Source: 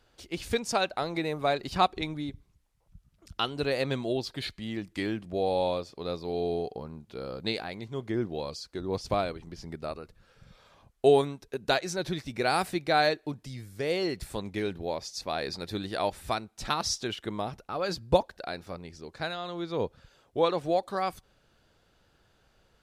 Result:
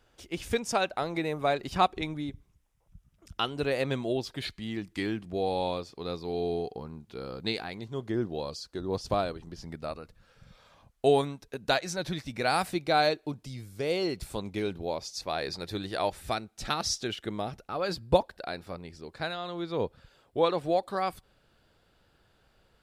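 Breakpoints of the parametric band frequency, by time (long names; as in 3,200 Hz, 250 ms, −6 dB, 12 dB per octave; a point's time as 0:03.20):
parametric band −7 dB 0.26 octaves
4,300 Hz
from 0:04.45 580 Hz
from 0:07.78 2,200 Hz
from 0:09.63 380 Hz
from 0:12.72 1,800 Hz
from 0:15.15 230 Hz
from 0:16.19 1,000 Hz
from 0:17.72 6,200 Hz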